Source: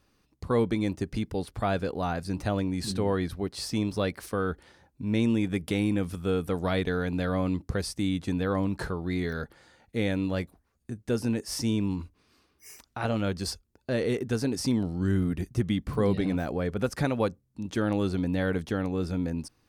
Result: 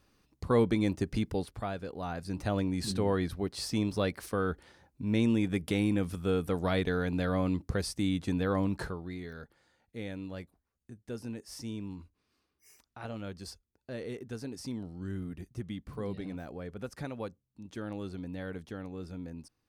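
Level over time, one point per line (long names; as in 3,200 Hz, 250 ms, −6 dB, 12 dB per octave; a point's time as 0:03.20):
0:01.33 −0.5 dB
0:01.76 −10.5 dB
0:02.59 −2 dB
0:08.75 −2 dB
0:09.19 −12 dB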